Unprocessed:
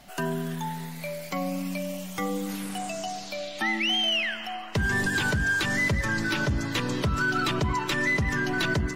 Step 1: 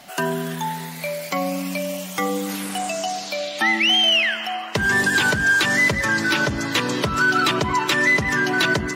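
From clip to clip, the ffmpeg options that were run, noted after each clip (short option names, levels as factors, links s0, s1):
-af "highpass=f=310:p=1,volume=2.66"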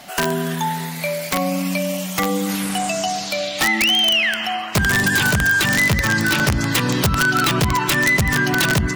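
-af "asubboost=boost=3.5:cutoff=190,acompressor=threshold=0.1:ratio=2.5,aeval=exprs='(mod(5.31*val(0)+1,2)-1)/5.31':c=same,volume=1.68"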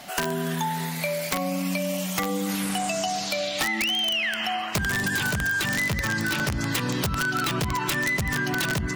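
-af "acompressor=threshold=0.0891:ratio=6,volume=0.794"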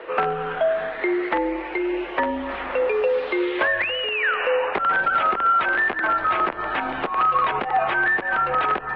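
-filter_complex "[0:a]highpass=59,highpass=f=230:t=q:w=0.5412,highpass=f=230:t=q:w=1.307,lowpass=f=3600:t=q:w=0.5176,lowpass=f=3600:t=q:w=0.7071,lowpass=f=3600:t=q:w=1.932,afreqshift=-230,acrossover=split=270 2000:gain=0.0708 1 0.141[s0][s1][s2];[s0][s1][s2]amix=inputs=3:normalize=0,volume=2.82"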